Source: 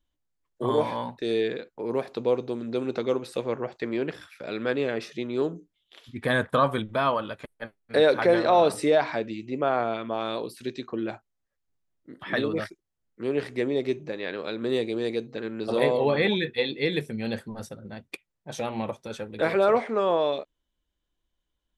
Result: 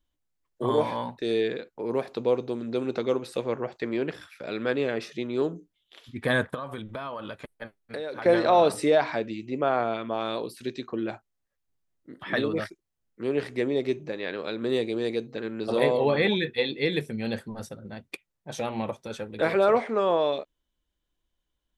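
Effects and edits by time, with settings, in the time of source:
0:06.54–0:08.26: downward compressor 8 to 1, threshold −31 dBFS

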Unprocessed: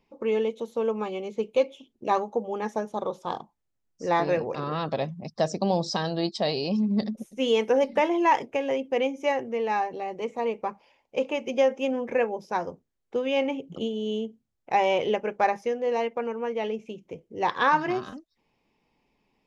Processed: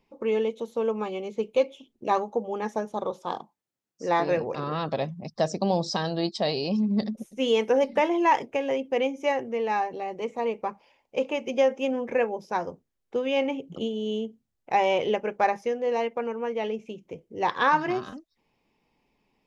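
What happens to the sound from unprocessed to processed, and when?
0:03.12–0:04.31: high-pass filter 160 Hz

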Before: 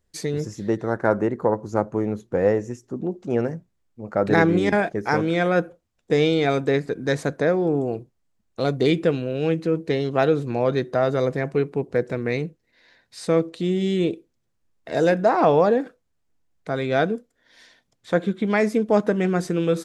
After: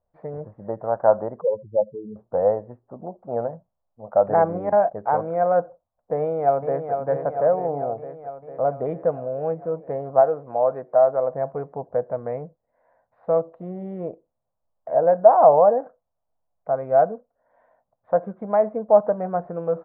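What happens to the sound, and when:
0:01.41–0:02.16: expanding power law on the bin magnitudes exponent 4
0:06.17–0:06.95: delay throw 450 ms, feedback 70%, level −6.5 dB
0:10.21–0:11.33: low-shelf EQ 170 Hz −12 dB
whole clip: inverse Chebyshev low-pass filter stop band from 5,900 Hz, stop band 80 dB; low shelf with overshoot 470 Hz −9 dB, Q 3; level +1 dB

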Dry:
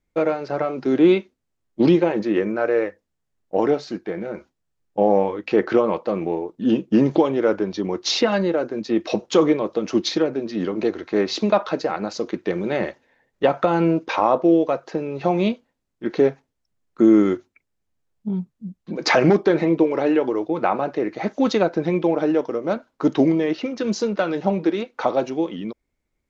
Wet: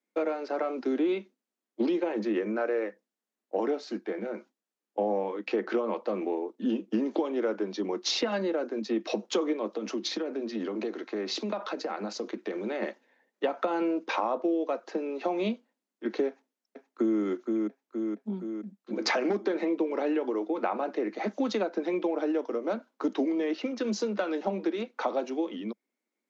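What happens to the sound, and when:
0:09.66–0:12.82: downward compressor, threshold −22 dBFS
0:16.28–0:17.20: delay throw 470 ms, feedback 60%, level −8.5 dB
whole clip: Butterworth high-pass 200 Hz 96 dB per octave; downward compressor 4 to 1, threshold −20 dBFS; level −5 dB

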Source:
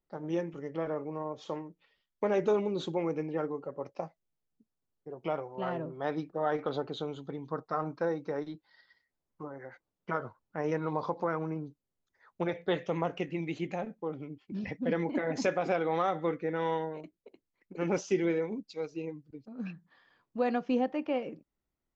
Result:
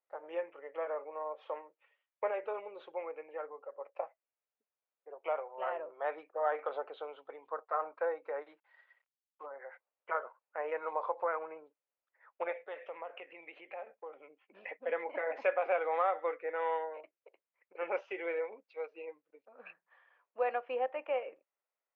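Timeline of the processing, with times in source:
0:02.31–0:03.96: clip gain −4.5 dB
0:08.49–0:09.46: variable-slope delta modulation 64 kbit/s
0:12.59–0:14.24: downward compressor 3 to 1, threshold −38 dBFS
whole clip: Chebyshev band-pass filter 520–2,600 Hz, order 3

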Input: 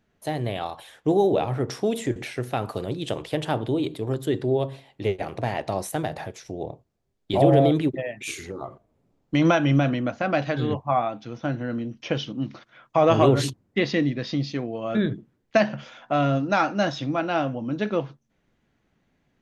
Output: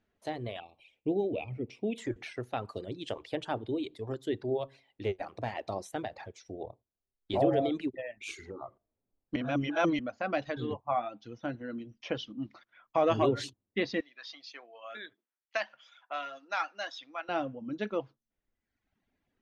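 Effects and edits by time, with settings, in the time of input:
0:00.60–0:01.98: drawn EQ curve 110 Hz 0 dB, 210 Hz +3 dB, 670 Hz −6 dB, 1,700 Hz −26 dB, 2,400 Hz +9 dB, 3,400 Hz −7 dB, 6,300 Hz −15 dB
0:09.36–0:09.99: reverse
0:14.00–0:17.29: high-pass filter 1,000 Hz
whole clip: low-pass filter 6,000 Hz 12 dB per octave; reverb reduction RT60 1.1 s; parametric band 150 Hz −11 dB 0.4 octaves; level −7 dB

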